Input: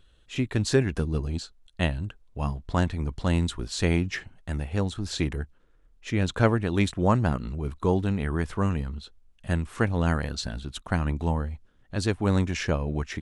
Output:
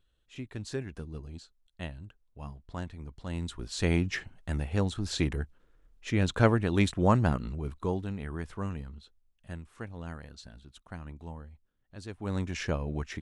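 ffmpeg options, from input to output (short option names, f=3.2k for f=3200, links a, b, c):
-af "volume=10dB,afade=t=in:st=3.27:d=0.81:silence=0.251189,afade=t=out:st=7.27:d=0.77:silence=0.398107,afade=t=out:st=8.72:d=1.01:silence=0.446684,afade=t=in:st=12.08:d=0.54:silence=0.266073"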